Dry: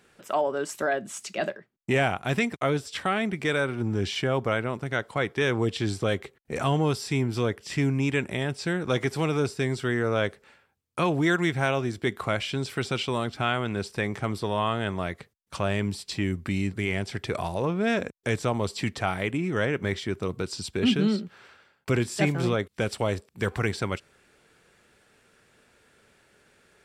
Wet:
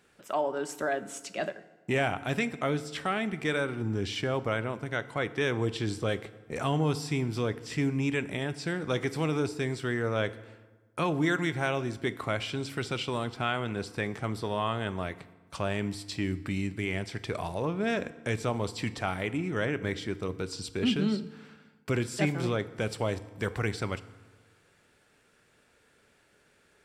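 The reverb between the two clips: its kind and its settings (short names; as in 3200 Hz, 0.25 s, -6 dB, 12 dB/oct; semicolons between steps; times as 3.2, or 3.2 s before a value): FDN reverb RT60 1.3 s, low-frequency decay 1.2×, high-frequency decay 0.7×, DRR 13.5 dB; gain -4 dB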